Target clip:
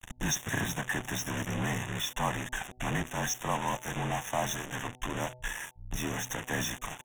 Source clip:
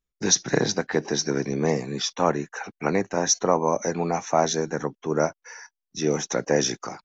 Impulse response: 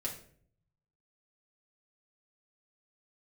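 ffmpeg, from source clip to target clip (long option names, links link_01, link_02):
-af "aeval=exprs='val(0)+0.5*0.0668*sgn(val(0))':channel_layout=same,lowpass=5800,equalizer=frequency=610:width=0.71:gain=-7,aecho=1:1:1.1:0.71,afreqshift=-31,equalizer=frequency=65:width=0.64:gain=-5,acrusher=bits=3:mix=0:aa=0.5,asuperstop=centerf=4600:order=8:qfactor=2,bandreject=frequency=125.5:width_type=h:width=4,bandreject=frequency=251:width_type=h:width=4,bandreject=frequency=376.5:width_type=h:width=4,bandreject=frequency=502:width_type=h:width=4,bandreject=frequency=627.5:width_type=h:width=4,bandreject=frequency=753:width_type=h:width=4,bandreject=frequency=878.5:width_type=h:width=4,volume=-7.5dB"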